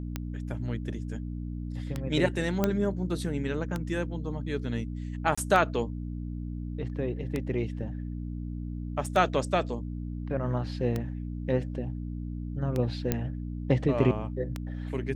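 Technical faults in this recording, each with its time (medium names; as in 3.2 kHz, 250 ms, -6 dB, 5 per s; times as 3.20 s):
hum 60 Hz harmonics 5 -35 dBFS
tick 33 1/3 rpm -17 dBFS
2.64 s: pop -11 dBFS
5.35–5.38 s: dropout 25 ms
9.06 s: dropout 3.1 ms
13.12 s: pop -11 dBFS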